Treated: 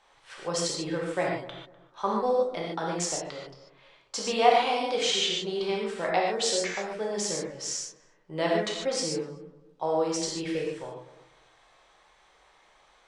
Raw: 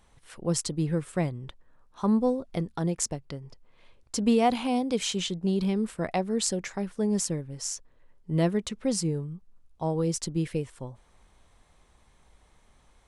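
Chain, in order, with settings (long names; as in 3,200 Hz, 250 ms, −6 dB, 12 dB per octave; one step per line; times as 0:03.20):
three-way crossover with the lows and the highs turned down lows −21 dB, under 440 Hz, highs −23 dB, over 6,600 Hz
feedback echo with a low-pass in the loop 249 ms, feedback 27%, low-pass 930 Hz, level −14 dB
reverb whose tail is shaped and stops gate 170 ms flat, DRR −3 dB
level +2.5 dB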